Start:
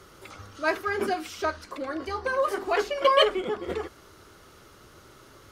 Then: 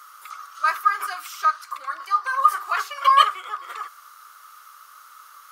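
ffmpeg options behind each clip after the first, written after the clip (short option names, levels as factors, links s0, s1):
-af "highpass=f=1200:t=q:w=8.2,aemphasis=mode=production:type=bsi,volume=0.631"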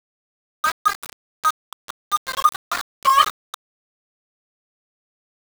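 -af "aeval=exprs='val(0)*gte(abs(val(0)),0.0944)':c=same"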